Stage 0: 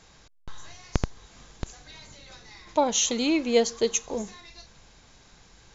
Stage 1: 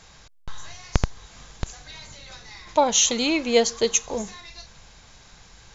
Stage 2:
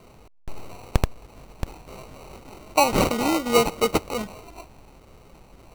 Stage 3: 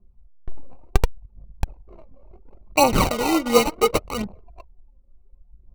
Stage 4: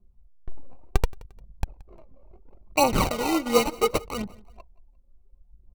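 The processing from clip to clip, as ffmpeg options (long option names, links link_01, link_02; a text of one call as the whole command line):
ffmpeg -i in.wav -af "equalizer=frequency=310:width_type=o:width=1.3:gain=-6,volume=5.5dB" out.wav
ffmpeg -i in.wav -af "acrusher=samples=26:mix=1:aa=0.000001" out.wav
ffmpeg -i in.wav -af "anlmdn=3.98,aphaser=in_gain=1:out_gain=1:delay=4:decay=0.57:speed=0.7:type=triangular" out.wav
ffmpeg -i in.wav -af "aecho=1:1:175|350:0.0708|0.0255,volume=-4dB" out.wav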